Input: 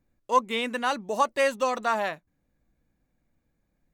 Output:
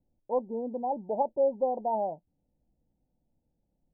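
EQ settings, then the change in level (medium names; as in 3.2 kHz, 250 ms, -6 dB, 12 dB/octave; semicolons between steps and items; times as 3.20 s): Chebyshev low-pass 920 Hz, order 8; dynamic bell 660 Hz, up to +3 dB, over -35 dBFS, Q 1.6; -2.5 dB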